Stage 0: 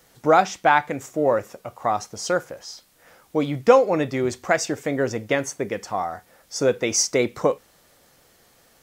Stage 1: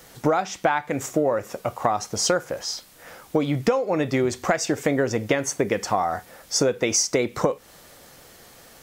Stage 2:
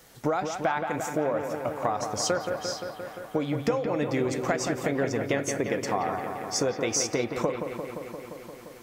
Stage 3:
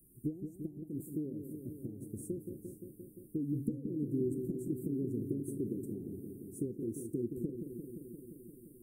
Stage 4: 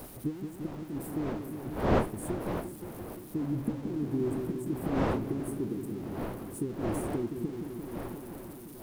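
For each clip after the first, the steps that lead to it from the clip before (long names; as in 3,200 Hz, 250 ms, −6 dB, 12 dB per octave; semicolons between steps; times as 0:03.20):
downward compressor 16 to 1, threshold −26 dBFS, peak gain reduction 19 dB; level +8.5 dB
bucket-brigade delay 174 ms, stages 4,096, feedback 78%, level −7 dB; level −6 dB
Chebyshev band-stop filter 380–9,000 Hz, order 5; level −4.5 dB
converter with a step at zero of −47.5 dBFS; wind on the microphone 580 Hz −40 dBFS; level +2.5 dB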